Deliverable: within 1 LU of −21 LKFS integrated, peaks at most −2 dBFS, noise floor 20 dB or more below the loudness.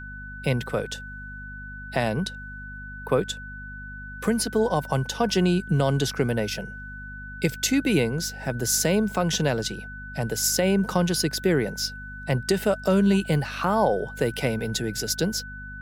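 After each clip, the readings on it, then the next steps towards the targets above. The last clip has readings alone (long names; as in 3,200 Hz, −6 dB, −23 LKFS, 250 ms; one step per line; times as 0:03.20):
mains hum 50 Hz; hum harmonics up to 250 Hz; level of the hum −39 dBFS; interfering tone 1,500 Hz; level of the tone −38 dBFS; integrated loudness −25.0 LKFS; sample peak −9.5 dBFS; target loudness −21.0 LKFS
→ hum removal 50 Hz, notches 5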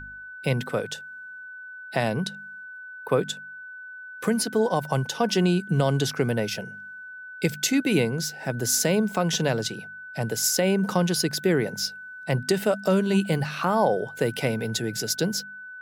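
mains hum none found; interfering tone 1,500 Hz; level of the tone −38 dBFS
→ notch filter 1,500 Hz, Q 30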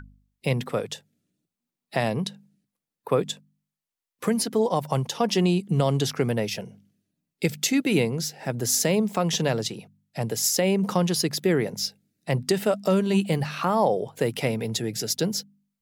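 interfering tone none found; integrated loudness −25.0 LKFS; sample peak −9.5 dBFS; target loudness −21.0 LKFS
→ level +4 dB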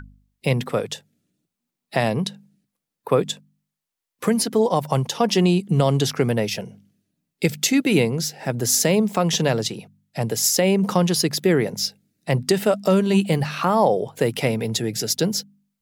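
integrated loudness −21.0 LKFS; sample peak −5.5 dBFS; background noise floor −84 dBFS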